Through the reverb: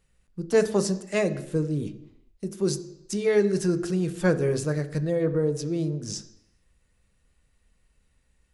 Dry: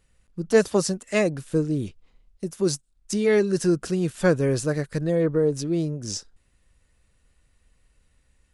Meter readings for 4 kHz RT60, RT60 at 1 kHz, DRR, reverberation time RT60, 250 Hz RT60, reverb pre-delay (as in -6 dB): 0.85 s, 0.85 s, 9.0 dB, 0.85 s, 0.80 s, 3 ms